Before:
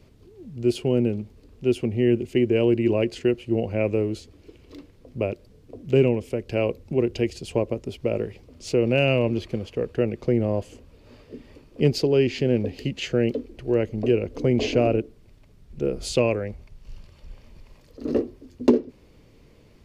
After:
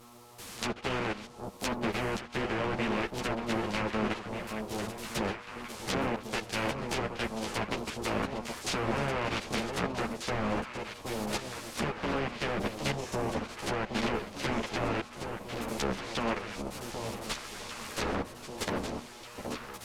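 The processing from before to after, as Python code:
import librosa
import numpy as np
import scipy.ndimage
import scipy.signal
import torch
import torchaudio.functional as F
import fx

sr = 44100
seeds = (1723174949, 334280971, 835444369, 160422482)

p1 = fx.spec_flatten(x, sr, power=0.18)
p2 = fx.recorder_agc(p1, sr, target_db=-3.0, rise_db_per_s=11.0, max_gain_db=30)
p3 = fx.spec_box(p2, sr, start_s=12.96, length_s=0.45, low_hz=1200.0, high_hz=5100.0, gain_db=-8)
p4 = fx.env_lowpass_down(p3, sr, base_hz=1300.0, full_db=-15.0)
p5 = fx.dynamic_eq(p4, sr, hz=190.0, q=3.4, threshold_db=-43.0, ratio=4.0, max_db=5)
p6 = fx.level_steps(p5, sr, step_db=14)
p7 = fx.dmg_buzz(p6, sr, base_hz=120.0, harmonics=11, level_db=-51.0, tilt_db=-2, odd_only=False)
p8 = p7 + fx.echo_alternate(p7, sr, ms=770, hz=1000.0, feedback_pct=69, wet_db=-4.5, dry=0)
y = fx.ensemble(p8, sr)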